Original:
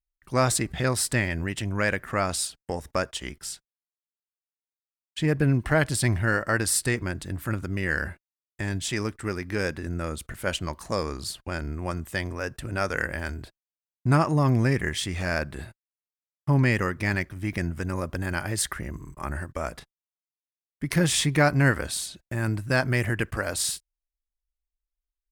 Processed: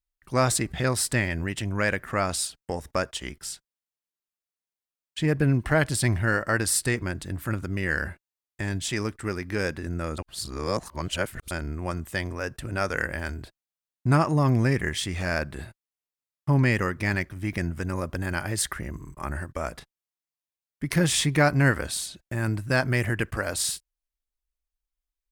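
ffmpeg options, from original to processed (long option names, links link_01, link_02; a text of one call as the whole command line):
ffmpeg -i in.wav -filter_complex "[0:a]asplit=3[link_01][link_02][link_03];[link_01]atrim=end=10.182[link_04];[link_02]atrim=start=10.178:end=11.512,asetpts=PTS-STARTPTS,areverse[link_05];[link_03]atrim=start=11.508[link_06];[link_04][link_05]acrossfade=duration=0.004:curve1=hsin:curve2=hsin[link_07];[link_07][link_06]acrossfade=duration=0.004:curve1=hsin:curve2=hsin" out.wav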